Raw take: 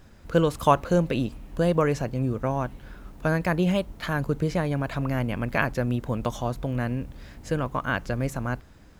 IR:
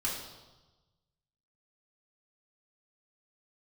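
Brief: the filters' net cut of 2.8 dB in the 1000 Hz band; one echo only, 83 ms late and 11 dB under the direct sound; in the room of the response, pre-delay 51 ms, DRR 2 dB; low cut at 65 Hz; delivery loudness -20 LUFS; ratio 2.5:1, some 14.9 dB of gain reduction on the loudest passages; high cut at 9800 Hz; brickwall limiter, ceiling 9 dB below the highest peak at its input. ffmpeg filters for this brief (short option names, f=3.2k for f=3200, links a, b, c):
-filter_complex "[0:a]highpass=65,lowpass=9.8k,equalizer=f=1k:t=o:g=-3.5,acompressor=threshold=-40dB:ratio=2.5,alimiter=level_in=6.5dB:limit=-24dB:level=0:latency=1,volume=-6.5dB,aecho=1:1:83:0.282,asplit=2[a][b];[1:a]atrim=start_sample=2205,adelay=51[c];[b][c]afir=irnorm=-1:irlink=0,volume=-7dB[d];[a][d]amix=inputs=2:normalize=0,volume=18.5dB"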